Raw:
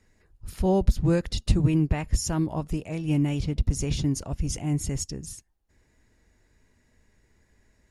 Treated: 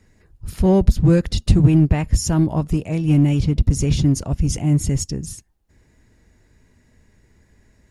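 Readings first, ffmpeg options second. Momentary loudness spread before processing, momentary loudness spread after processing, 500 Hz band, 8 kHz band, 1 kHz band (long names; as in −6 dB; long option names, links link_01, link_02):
9 LU, 8 LU, +6.5 dB, +5.5 dB, +4.5 dB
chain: -filter_complex "[0:a]equalizer=frequency=130:width=0.46:gain=5.5,asplit=2[link_01][link_02];[link_02]asoftclip=type=hard:threshold=-18.5dB,volume=-6.5dB[link_03];[link_01][link_03]amix=inputs=2:normalize=0,volume=2dB"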